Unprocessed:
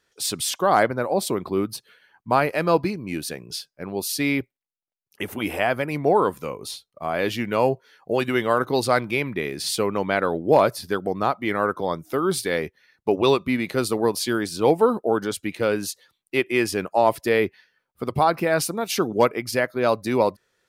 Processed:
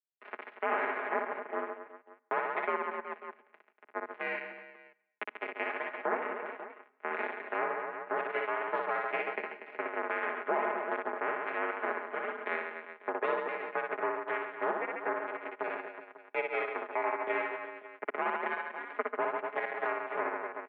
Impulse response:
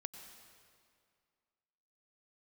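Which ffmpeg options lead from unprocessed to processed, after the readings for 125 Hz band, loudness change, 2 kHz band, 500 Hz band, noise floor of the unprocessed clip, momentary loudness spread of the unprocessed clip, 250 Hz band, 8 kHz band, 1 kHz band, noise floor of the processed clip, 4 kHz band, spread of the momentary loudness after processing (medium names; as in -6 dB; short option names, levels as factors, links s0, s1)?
under -30 dB, -12.0 dB, -6.0 dB, -13.5 dB, -80 dBFS, 11 LU, -20.5 dB, under -40 dB, -9.5 dB, -68 dBFS, -23.5 dB, 10 LU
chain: -filter_complex "[0:a]acompressor=threshold=0.0501:ratio=2,acrusher=bits=2:mix=0:aa=0.5,asplit=2[s0][s1];[1:a]atrim=start_sample=2205,afade=t=out:st=0.35:d=0.01,atrim=end_sample=15876[s2];[s1][s2]afir=irnorm=-1:irlink=0,volume=0.376[s3];[s0][s3]amix=inputs=2:normalize=0,highpass=f=240:t=q:w=0.5412,highpass=f=240:t=q:w=1.307,lowpass=f=2200:t=q:w=0.5176,lowpass=f=2200:t=q:w=0.7071,lowpass=f=2200:t=q:w=1.932,afreqshift=56,aecho=1:1:60|138|239.4|371.2|542.6:0.631|0.398|0.251|0.158|0.1,alimiter=limit=0.0891:level=0:latency=1:release=355,aecho=1:1:4.8:0.77"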